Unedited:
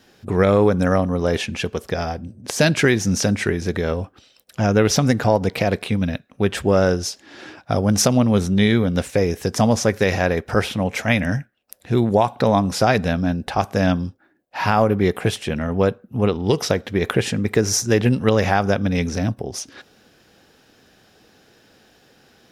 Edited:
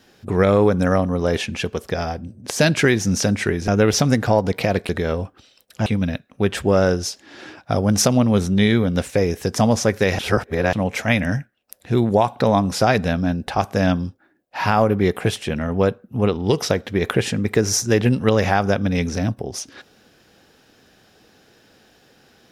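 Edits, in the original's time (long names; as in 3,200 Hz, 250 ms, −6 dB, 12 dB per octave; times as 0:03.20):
0:03.68–0:04.65: move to 0:05.86
0:10.19–0:10.73: reverse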